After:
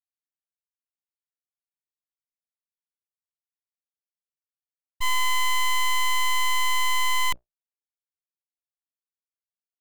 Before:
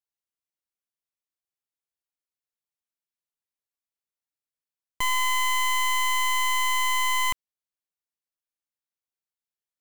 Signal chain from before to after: companding laws mixed up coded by A; Chebyshev shaper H 5 -19 dB, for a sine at -24 dBFS; bass shelf 220 Hz -3.5 dB; hum notches 60/120/180/240/300/360/420/480/540/600 Hz; full-wave rectifier; expander -26 dBFS; loudspeaker Doppler distortion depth 0.16 ms; trim +5 dB

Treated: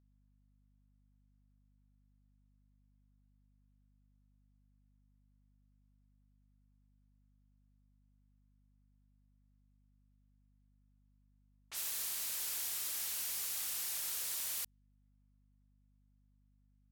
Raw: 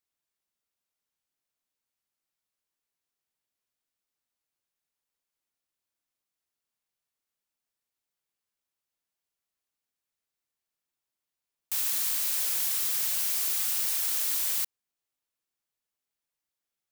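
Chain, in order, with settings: level-controlled noise filter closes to 1.2 kHz, open at -26.5 dBFS; hum 50 Hz, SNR 24 dB; tape noise reduction on one side only encoder only; trim -8 dB

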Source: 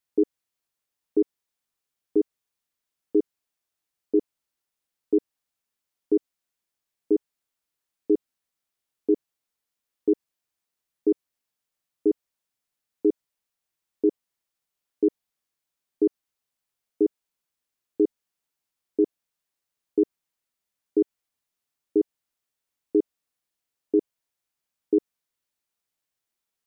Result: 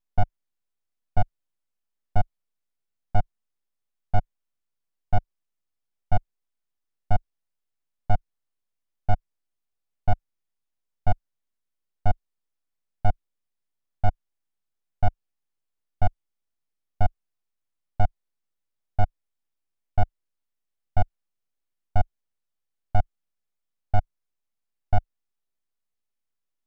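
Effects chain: full-wave rectifier; tilt EQ -1.5 dB/octave; trim -2 dB

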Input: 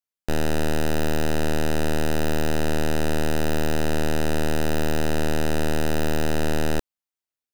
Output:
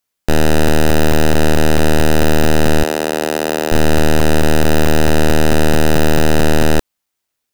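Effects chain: 2.83–3.72 s: high-pass 370 Hz 12 dB/octave; in parallel at +2 dB: saturation -29.5 dBFS, distortion -22 dB; on the sum: crackling interface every 0.22 s, samples 128, zero, from 0.68 s; trim +8 dB

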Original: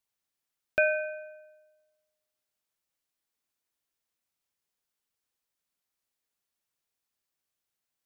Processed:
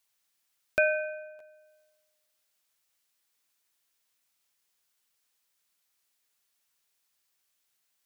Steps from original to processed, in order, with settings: crackling interface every 0.89 s, samples 512, repeat, from 0.49 s; tape noise reduction on one side only encoder only

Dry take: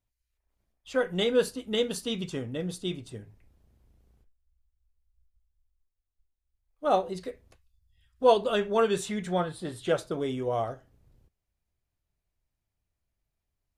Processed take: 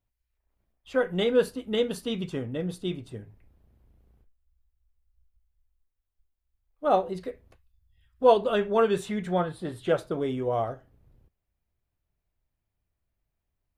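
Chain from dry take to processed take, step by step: peaking EQ 6.8 kHz -9.5 dB 1.8 oct; trim +2 dB

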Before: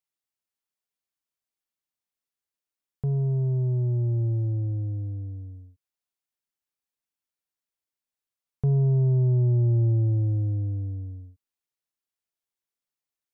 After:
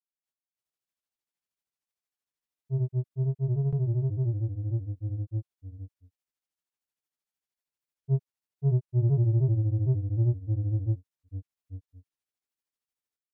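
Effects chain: granulator 120 ms, grains 13 per s, spray 791 ms, pitch spread up and down by 0 st

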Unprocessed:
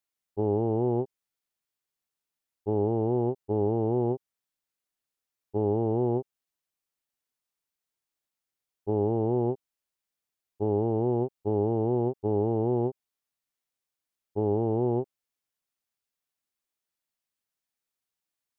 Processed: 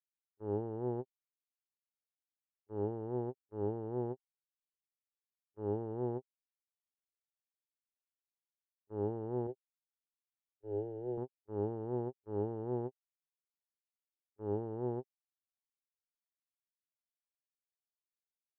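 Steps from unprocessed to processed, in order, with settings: gate -23 dBFS, range -52 dB; 9.47–11.18 s: static phaser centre 470 Hz, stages 4; trim -3.5 dB

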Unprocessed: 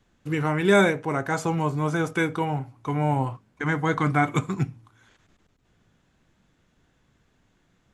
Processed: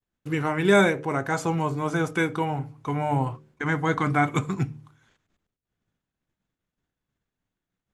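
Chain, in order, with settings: expander -52 dBFS; de-hum 75.25 Hz, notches 7

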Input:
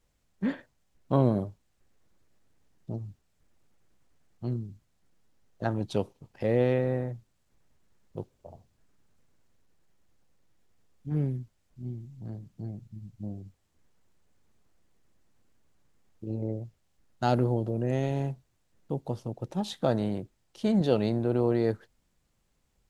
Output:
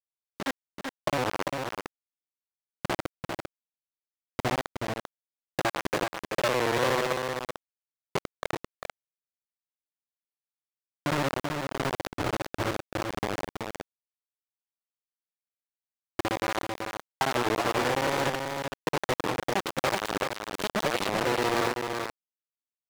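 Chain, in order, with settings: time reversed locally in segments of 57 ms; on a send at -15.5 dB: reverberation RT60 0.90 s, pre-delay 60 ms; on the sum: compression 5:1, threshold -43 dBFS, peak gain reduction 22 dB; comb of notches 220 Hz; bit crusher 7-bit; overdrive pedal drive 16 dB, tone 4.5 kHz, clips at -26 dBFS; level rider gain up to 13 dB; delay 383 ms -5 dB; warped record 33 1/3 rpm, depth 160 cents

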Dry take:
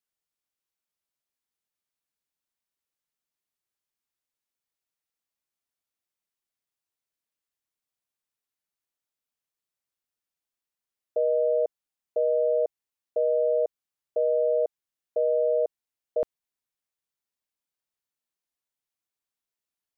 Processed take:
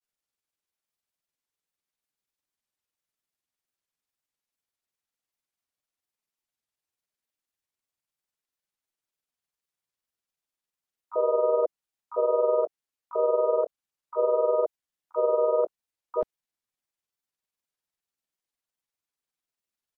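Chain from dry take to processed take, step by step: harmony voices -4 st -13 dB, -3 st -15 dB, +12 st -12 dB; granulator 89 ms, grains 20 per s, spray 13 ms, pitch spread up and down by 0 st; trim +1.5 dB

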